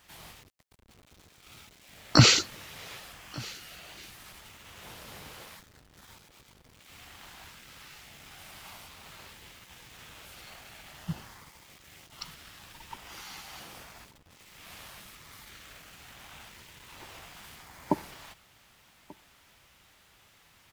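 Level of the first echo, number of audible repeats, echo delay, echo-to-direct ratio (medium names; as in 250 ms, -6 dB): -23.0 dB, 1, 1187 ms, -23.0 dB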